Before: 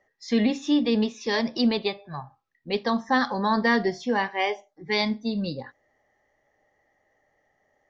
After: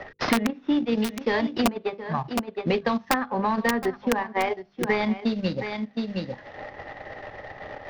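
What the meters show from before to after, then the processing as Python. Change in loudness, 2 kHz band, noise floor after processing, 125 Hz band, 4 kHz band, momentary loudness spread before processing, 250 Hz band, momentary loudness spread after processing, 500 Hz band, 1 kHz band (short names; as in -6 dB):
-1.0 dB, -0.5 dB, -53 dBFS, +3.0 dB, -3.5 dB, 10 LU, -0.5 dB, 15 LU, +1.0 dB, +0.5 dB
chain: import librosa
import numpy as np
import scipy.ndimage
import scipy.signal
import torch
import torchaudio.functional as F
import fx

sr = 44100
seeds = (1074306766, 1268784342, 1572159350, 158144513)

p1 = fx.cvsd(x, sr, bps=32000)
p2 = scipy.signal.sosfilt(scipy.signal.butter(2, 2000.0, 'lowpass', fs=sr, output='sos'), p1)
p3 = fx.peak_eq(p2, sr, hz=100.0, db=6.0, octaves=0.47)
p4 = fx.hum_notches(p3, sr, base_hz=50, count=10)
p5 = fx.transient(p4, sr, attack_db=4, sustain_db=-10)
p6 = fx.level_steps(p5, sr, step_db=10)
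p7 = p5 + F.gain(torch.from_numpy(p6), -1.0).numpy()
p8 = (np.mod(10.0 ** (7.5 / 20.0) * p7 + 1.0, 2.0) - 1.0) / 10.0 ** (7.5 / 20.0)
p9 = p8 + fx.echo_single(p8, sr, ms=717, db=-17.0, dry=0)
p10 = fx.band_squash(p9, sr, depth_pct=100)
y = F.gain(torch.from_numpy(p10), -4.0).numpy()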